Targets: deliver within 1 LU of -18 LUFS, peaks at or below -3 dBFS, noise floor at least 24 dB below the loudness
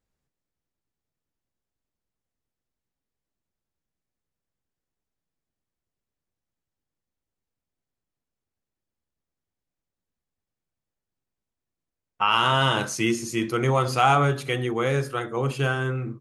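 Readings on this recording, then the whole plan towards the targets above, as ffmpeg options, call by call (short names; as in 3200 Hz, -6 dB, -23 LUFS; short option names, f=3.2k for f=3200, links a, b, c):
loudness -23.5 LUFS; peak -7.0 dBFS; loudness target -18.0 LUFS
-> -af "volume=5.5dB,alimiter=limit=-3dB:level=0:latency=1"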